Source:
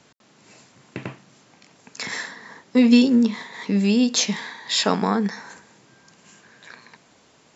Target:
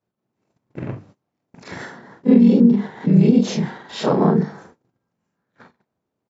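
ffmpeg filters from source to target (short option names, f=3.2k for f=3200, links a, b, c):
-filter_complex "[0:a]afftfilt=real='re':imag='-im':win_size=4096:overlap=0.75,tiltshelf=f=1.4k:g=9.5,atempo=1.2,adynamicequalizer=threshold=0.0794:dfrequency=390:dqfactor=0.75:tfrequency=390:tqfactor=0.75:attack=5:release=100:ratio=0.375:range=2:mode=boostabove:tftype=bell,asplit=4[a][b][c][d];[b]asetrate=33038,aresample=44100,atempo=1.33484,volume=-18dB[e];[c]asetrate=35002,aresample=44100,atempo=1.25992,volume=-10dB[f];[d]asetrate=37084,aresample=44100,atempo=1.18921,volume=-3dB[g];[a][e][f][g]amix=inputs=4:normalize=0,alimiter=limit=-2.5dB:level=0:latency=1:release=129,bandreject=f=50:t=h:w=6,bandreject=f=100:t=h:w=6,bandreject=f=150:t=h:w=6,bandreject=f=200:t=h:w=6,bandreject=f=250:t=h:w=6,bandreject=f=300:t=h:w=6,bandreject=f=350:t=h:w=6,bandreject=f=400:t=h:w=6,bandreject=f=450:t=h:w=6,agate=range=-25dB:threshold=-45dB:ratio=16:detection=peak"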